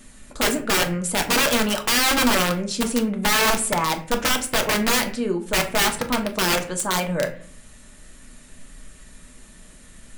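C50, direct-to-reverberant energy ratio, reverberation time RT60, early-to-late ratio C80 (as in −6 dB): 13.0 dB, 4.0 dB, 0.45 s, 17.0 dB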